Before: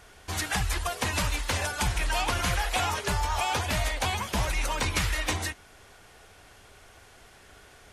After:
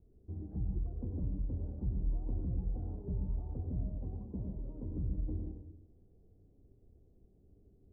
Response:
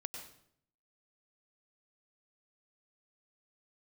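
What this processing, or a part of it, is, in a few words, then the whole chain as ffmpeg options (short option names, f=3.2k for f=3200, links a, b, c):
next room: -filter_complex "[0:a]asettb=1/sr,asplit=3[a][b][c];[a]atrim=end=3.914[d];[b]atrim=start=3.91:end=4.91,asetpts=PTS-STARTPTS,afade=t=in:d=0.004:c=qsin,afade=t=out:st=0.996:d=0.004:c=qsin,highpass=f=110:p=1[e];[c]atrim=start=4.906[f];[d][e]acrossfade=d=0.004:c1=hsin:c2=qsin[g];[g][f]acrossfade=d=0.004:c1=qsin:c2=hsin,lowpass=f=350:w=0.5412,lowpass=f=350:w=1.3066[h];[1:a]atrim=start_sample=2205[i];[h][i]afir=irnorm=-1:irlink=0,volume=-2.5dB"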